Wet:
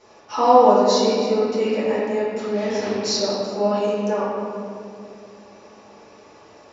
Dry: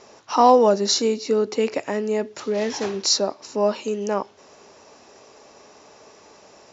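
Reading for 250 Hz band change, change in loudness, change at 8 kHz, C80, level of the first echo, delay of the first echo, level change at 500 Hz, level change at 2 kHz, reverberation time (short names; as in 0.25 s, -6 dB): +2.5 dB, +1.5 dB, n/a, 0.0 dB, none, none, +2.0 dB, +1.5 dB, 2.4 s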